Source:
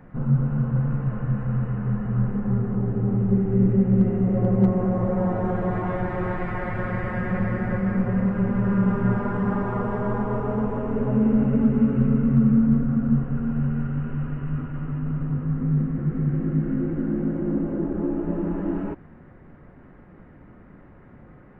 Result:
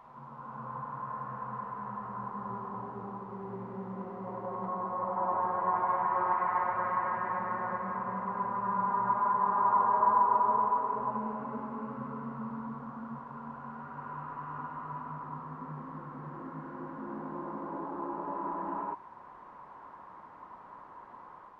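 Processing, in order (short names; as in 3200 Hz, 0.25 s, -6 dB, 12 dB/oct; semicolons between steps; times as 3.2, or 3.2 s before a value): AGC gain up to 15 dB; added noise brown -29 dBFS; band-pass 1000 Hz, Q 10; reverse echo 0.101 s -4 dB; gain +1 dB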